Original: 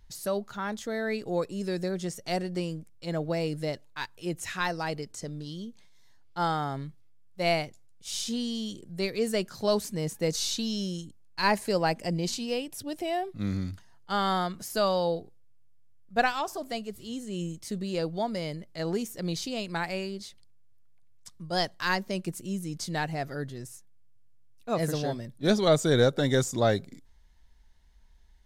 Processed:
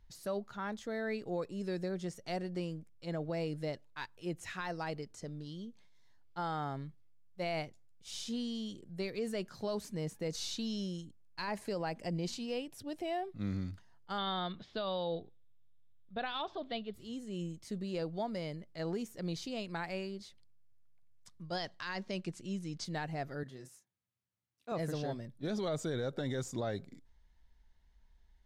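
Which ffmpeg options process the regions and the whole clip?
ffmpeg -i in.wav -filter_complex "[0:a]asettb=1/sr,asplit=3[link_01][link_02][link_03];[link_01]atrim=end=14.184[link_04];[link_02]atrim=start=14.18:end=16.94,asetpts=PTS-STARTPTS,afade=type=in:duration=0.004:curve=qsin,afade=type=out:start_time=2.756:duration=0.004:curve=qsin,deesser=0.65,lowpass=frequency=3600:width_type=q:width=8.7,aemphasis=mode=reproduction:type=75fm[link_05];[link_03]atrim=start=16.936[link_06];[link_04][link_05]acrossfade=duration=0.004:curve1=hsin:curve2=qsin[link_07];[link_07][link_06]acrossfade=duration=0.004:curve1=qsin:curve2=hsin,asettb=1/sr,asplit=3[link_08][link_09][link_10];[link_08]atrim=end=21.424[link_11];[link_09]atrim=start=21.42:end=22.85,asetpts=PTS-STARTPTS,afade=type=in:duration=0.004:curve=qsin,afade=type=out:start_time=1.426:duration=0.004:curve=qsin,lowpass=5600,highshelf=frequency=2100:gain=8[link_12];[link_10]atrim=start=22.846[link_13];[link_11][link_12]acrossfade=duration=0.004:curve1=hsin:curve2=qsin[link_14];[link_14][link_13]acrossfade=duration=0.004:curve1=qsin:curve2=hsin,asettb=1/sr,asplit=3[link_15][link_16][link_17];[link_15]atrim=end=23.434[link_18];[link_16]atrim=start=23.43:end=24.72,asetpts=PTS-STARTPTS,afade=type=in:duration=0.004:curve=qsin,afade=type=out:start_time=1.286:duration=0.004:curve=qsin,highpass=130,lowshelf=frequency=390:gain=-5,asplit=2[link_19][link_20];[link_20]adelay=31,volume=-8dB[link_21];[link_19][link_21]amix=inputs=2:normalize=0,atrim=end_sample=56889[link_22];[link_17]atrim=start=24.716[link_23];[link_18][link_22]acrossfade=duration=0.004:curve1=hsin:curve2=qsin[link_24];[link_24][link_23]acrossfade=duration=0.004:curve1=qsin:curve2=hsin,highshelf=frequency=6100:gain=-10,alimiter=limit=-22dB:level=0:latency=1:release=51,volume=-6dB" out.wav

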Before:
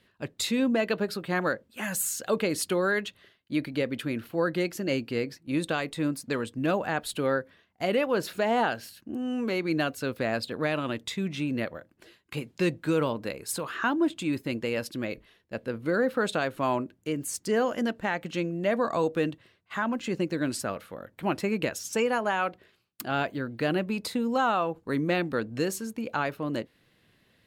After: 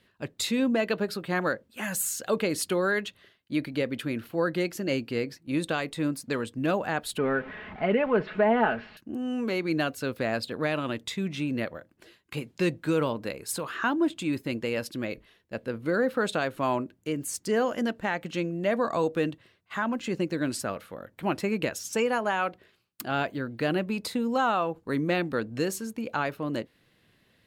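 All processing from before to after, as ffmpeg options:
ffmpeg -i in.wav -filter_complex "[0:a]asettb=1/sr,asplit=3[link_01][link_02][link_03];[link_01]atrim=end=7.184[link_04];[link_02]atrim=start=7.18:end=8.97,asetpts=PTS-STARTPTS,afade=type=in:duration=0.004:curve=qsin,afade=type=out:start_time=1.786:duration=0.004:curve=qsin,aeval=exprs='val(0)+0.5*0.0168*sgn(val(0))':channel_layout=same,lowpass=frequency=2500:width=0.5412,lowpass=frequency=2500:width=1.3066,aecho=1:1:4.7:0.52,atrim=end_sample=78939[link_05];[link_03]atrim=start=8.966[link_06];[link_04][link_05]acrossfade=duration=0.004:curve1=hsin:curve2=qsin[link_07];[link_07][link_06]acrossfade=duration=0.004:curve1=qsin:curve2=hsin" out.wav

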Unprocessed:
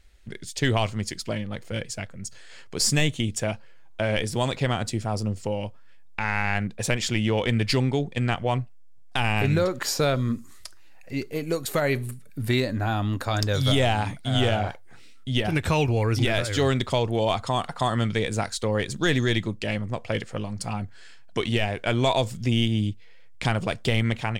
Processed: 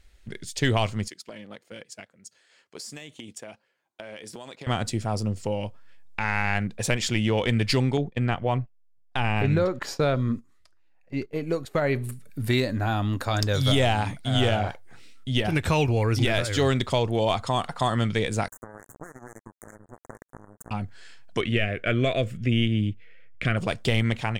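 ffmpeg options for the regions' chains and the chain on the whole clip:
ffmpeg -i in.wav -filter_complex "[0:a]asettb=1/sr,asplit=3[link_01][link_02][link_03];[link_01]atrim=end=1.084[link_04];[link_02]atrim=start=1.08:end=4.67,asetpts=PTS-STARTPTS,afade=type=in:duration=0.004:curve=qsin,afade=type=out:start_time=3.586:duration=0.004:curve=qsin,agate=range=-12dB:threshold=-33dB:ratio=16:release=100:detection=peak,highpass=240,acompressor=threshold=-36dB:ratio=10:attack=3.2:release=140:knee=1:detection=peak[link_05];[link_03]atrim=start=4.666[link_06];[link_04][link_05]acrossfade=duration=0.004:curve1=hsin:curve2=qsin[link_07];[link_07][link_06]acrossfade=duration=0.004:curve1=qsin:curve2=hsin,asettb=1/sr,asplit=3[link_08][link_09][link_10];[link_08]atrim=end=7.974[link_11];[link_09]atrim=start=7.97:end=12.04,asetpts=PTS-STARTPTS,afade=type=in:duration=0.004:curve=qsin,afade=type=out:start_time=4.066:duration=0.004:curve=qsin,lowpass=frequency=2200:poles=1,agate=range=-14dB:threshold=-37dB:ratio=16:release=100:detection=peak[link_12];[link_10]atrim=start=12.036[link_13];[link_11][link_12]acrossfade=duration=0.004:curve1=hsin:curve2=qsin[link_14];[link_14][link_13]acrossfade=duration=0.004:curve1=qsin:curve2=hsin,asettb=1/sr,asplit=3[link_15][link_16][link_17];[link_15]atrim=end=18.484[link_18];[link_16]atrim=start=18.48:end=20.71,asetpts=PTS-STARTPTS,afade=type=in:duration=0.004:curve=qsin,afade=type=out:start_time=2.226:duration=0.004:curve=qsin,acompressor=threshold=-34dB:ratio=8:attack=3.2:release=140:knee=1:detection=peak,acrusher=bits=4:mix=0:aa=0.5,asuperstop=centerf=3500:order=12:qfactor=0.72[link_19];[link_17]atrim=start=20.706[link_20];[link_18][link_19]acrossfade=duration=0.004:curve1=hsin:curve2=qsin[link_21];[link_21][link_20]acrossfade=duration=0.004:curve1=qsin:curve2=hsin,asettb=1/sr,asplit=3[link_22][link_23][link_24];[link_22]atrim=end=21.414[link_25];[link_23]atrim=start=21.41:end=23.57,asetpts=PTS-STARTPTS,afade=type=in:duration=0.004:curve=qsin,afade=type=out:start_time=2.156:duration=0.004:curve=qsin,asuperstop=centerf=890:order=4:qfactor=1.7,highshelf=frequency=3400:width_type=q:width=1.5:gain=-10.5[link_26];[link_24]atrim=start=23.566[link_27];[link_25][link_26]acrossfade=duration=0.004:curve1=hsin:curve2=qsin[link_28];[link_28][link_27]acrossfade=duration=0.004:curve1=qsin:curve2=hsin" out.wav

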